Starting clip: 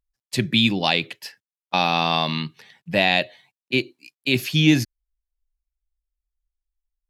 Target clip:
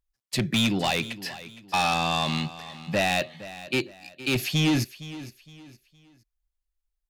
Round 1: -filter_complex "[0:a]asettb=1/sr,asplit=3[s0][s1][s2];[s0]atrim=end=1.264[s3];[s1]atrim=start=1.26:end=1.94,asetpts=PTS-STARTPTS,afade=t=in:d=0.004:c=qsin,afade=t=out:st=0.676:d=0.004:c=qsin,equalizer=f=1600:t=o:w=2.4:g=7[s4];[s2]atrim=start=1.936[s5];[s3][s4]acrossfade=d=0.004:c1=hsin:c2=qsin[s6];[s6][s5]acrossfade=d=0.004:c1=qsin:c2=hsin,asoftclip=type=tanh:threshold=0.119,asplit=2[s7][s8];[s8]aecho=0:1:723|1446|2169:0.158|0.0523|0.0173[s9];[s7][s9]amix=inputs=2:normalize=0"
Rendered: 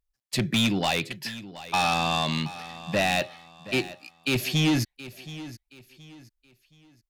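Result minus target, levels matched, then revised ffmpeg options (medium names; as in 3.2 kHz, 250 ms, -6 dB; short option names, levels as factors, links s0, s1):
echo 260 ms late
-filter_complex "[0:a]asettb=1/sr,asplit=3[s0][s1][s2];[s0]atrim=end=1.264[s3];[s1]atrim=start=1.26:end=1.94,asetpts=PTS-STARTPTS,afade=t=in:d=0.004:c=qsin,afade=t=out:st=0.676:d=0.004:c=qsin,equalizer=f=1600:t=o:w=2.4:g=7[s4];[s2]atrim=start=1.936[s5];[s3][s4]acrossfade=d=0.004:c1=hsin:c2=qsin[s6];[s6][s5]acrossfade=d=0.004:c1=qsin:c2=hsin,asoftclip=type=tanh:threshold=0.119,asplit=2[s7][s8];[s8]aecho=0:1:463|926|1389:0.158|0.0523|0.0173[s9];[s7][s9]amix=inputs=2:normalize=0"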